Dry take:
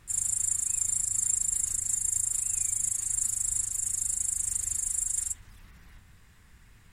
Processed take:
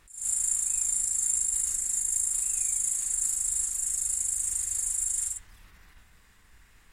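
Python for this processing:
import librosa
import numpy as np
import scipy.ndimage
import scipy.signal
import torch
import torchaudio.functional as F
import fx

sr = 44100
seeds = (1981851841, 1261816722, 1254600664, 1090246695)

p1 = fx.peak_eq(x, sr, hz=120.0, db=-11.0, octaves=1.7)
p2 = p1 + fx.room_early_taps(p1, sr, ms=(33, 54), db=(-12.0, -5.5), dry=0)
y = fx.attack_slew(p2, sr, db_per_s=130.0)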